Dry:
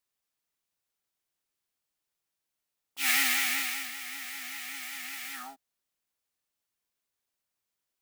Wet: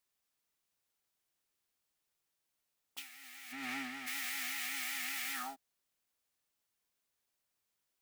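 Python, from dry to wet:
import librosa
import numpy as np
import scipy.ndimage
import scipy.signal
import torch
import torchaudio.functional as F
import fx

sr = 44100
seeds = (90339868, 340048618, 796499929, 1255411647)

y = fx.tilt_eq(x, sr, slope=-5.0, at=(3.51, 4.06), fade=0.02)
y = fx.over_compress(y, sr, threshold_db=-40.0, ratio=-1.0)
y = y * 10.0 ** (-4.0 / 20.0)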